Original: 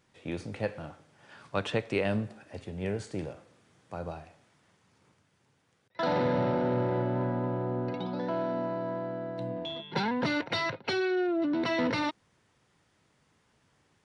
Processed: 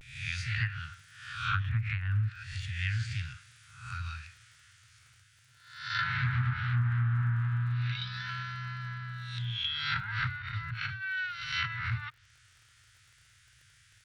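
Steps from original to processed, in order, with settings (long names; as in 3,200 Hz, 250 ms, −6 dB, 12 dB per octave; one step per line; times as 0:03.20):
peak hold with a rise ahead of every peak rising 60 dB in 0.70 s
Chebyshev band-stop filter 120–1,400 Hz, order 4
treble cut that deepens with the level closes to 720 Hz, closed at −30 dBFS
high-shelf EQ 7,600 Hz +6 dB
surface crackle 52 per second −59 dBFS
pitch vibrato 0.38 Hz 45 cents
highs frequency-modulated by the lows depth 0.18 ms
level +8 dB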